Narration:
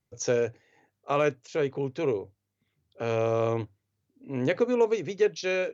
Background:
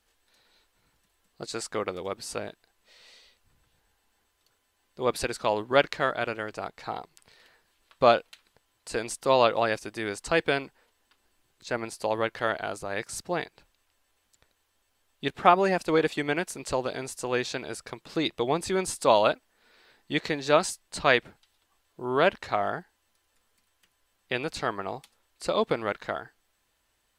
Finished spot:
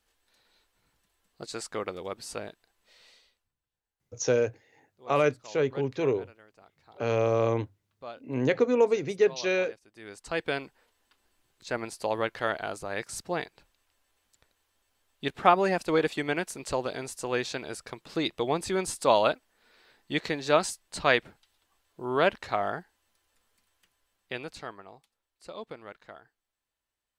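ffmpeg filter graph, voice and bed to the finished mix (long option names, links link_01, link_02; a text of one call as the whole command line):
ffmpeg -i stem1.wav -i stem2.wav -filter_complex "[0:a]adelay=4000,volume=1dB[link_01];[1:a]volume=18dB,afade=type=out:start_time=3.03:duration=0.49:silence=0.105925,afade=type=in:start_time=9.88:duration=0.94:silence=0.0891251,afade=type=out:start_time=23.75:duration=1.11:silence=0.199526[link_02];[link_01][link_02]amix=inputs=2:normalize=0" out.wav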